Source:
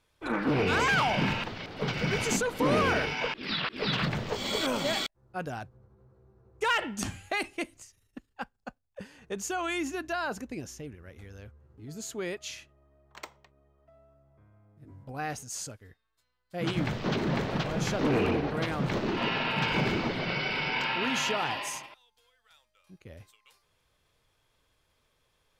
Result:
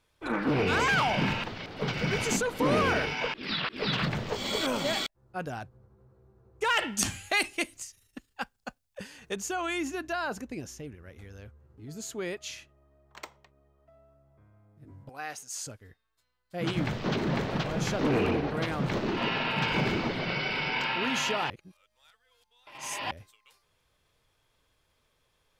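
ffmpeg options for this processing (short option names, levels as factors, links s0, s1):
-filter_complex "[0:a]asettb=1/sr,asplit=3[s0][s1][s2];[s0]atrim=end=6.774[s3];[s1]atrim=start=6.77:end=9.36,asetpts=PTS-STARTPTS,afade=t=in:d=0.004:c=qsin,afade=t=out:st=2.586:d=0.004:c=qsin,highshelf=f=2000:g=10[s4];[s2]atrim=start=9.356[s5];[s3][s4]acrossfade=d=0.004:c1=hsin:c2=qsin[s6];[s6][s5]acrossfade=d=0.004:c1=qsin:c2=hsin,asettb=1/sr,asplit=3[s7][s8][s9];[s7]atrim=end=15.094[s10];[s8]atrim=start=15.09:end=15.65,asetpts=PTS-STARTPTS,afade=t=in:d=0.004:c=qsin,afade=t=out:st=0.556:d=0.004:c=qsin,highpass=f=960:p=1[s11];[s9]atrim=start=15.646[s12];[s10][s11]acrossfade=d=0.004:c1=hsin:c2=qsin[s13];[s13][s12]acrossfade=d=0.004:c1=qsin:c2=hsin,asplit=3[s14][s15][s16];[s14]atrim=end=21.502[s17];[s15]atrim=start=21.498:end=23.112,asetpts=PTS-STARTPTS,areverse[s18];[s16]atrim=start=23.108[s19];[s17][s18]acrossfade=d=0.004:c1=hsin:c2=hsin[s20];[s20][s19]acrossfade=d=0.004:c1=hsin:c2=hsin"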